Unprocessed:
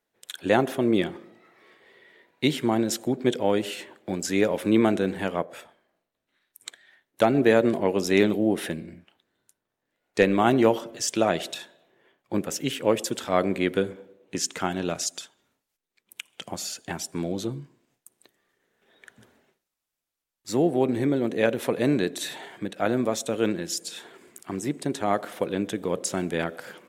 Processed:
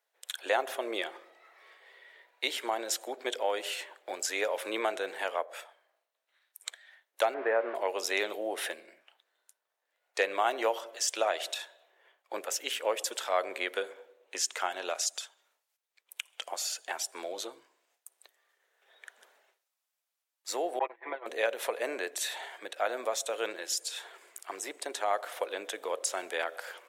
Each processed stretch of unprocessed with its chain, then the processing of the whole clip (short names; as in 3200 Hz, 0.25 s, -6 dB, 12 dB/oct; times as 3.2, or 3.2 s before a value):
7.34–7.75 switching spikes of -14.5 dBFS + inverse Chebyshev low-pass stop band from 7500 Hz, stop band 70 dB
20.79–21.26 gate -23 dBFS, range -33 dB + speaker cabinet 370–2700 Hz, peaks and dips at 520 Hz -4 dB, 1000 Hz +7 dB, 1900 Hz +8 dB + comb 6 ms, depth 94%
21.78–22.24 bell 3800 Hz -11.5 dB 0.26 oct + three-band expander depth 40%
whole clip: HPF 540 Hz 24 dB/oct; compressor 1.5:1, threshold -31 dBFS